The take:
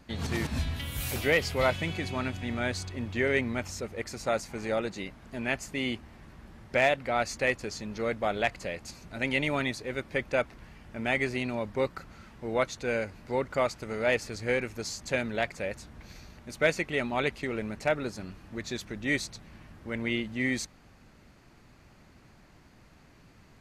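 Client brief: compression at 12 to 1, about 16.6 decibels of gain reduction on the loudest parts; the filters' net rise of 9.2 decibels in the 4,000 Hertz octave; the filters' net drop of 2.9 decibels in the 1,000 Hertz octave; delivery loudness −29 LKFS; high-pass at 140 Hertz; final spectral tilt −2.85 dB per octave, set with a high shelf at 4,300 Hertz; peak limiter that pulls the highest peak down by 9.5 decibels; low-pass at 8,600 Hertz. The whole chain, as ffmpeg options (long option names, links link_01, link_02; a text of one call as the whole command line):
ffmpeg -i in.wav -af "highpass=140,lowpass=8600,equalizer=frequency=1000:width_type=o:gain=-5.5,equalizer=frequency=4000:width_type=o:gain=8.5,highshelf=frequency=4300:gain=7,acompressor=threshold=-36dB:ratio=12,volume=13.5dB,alimiter=limit=-17dB:level=0:latency=1" out.wav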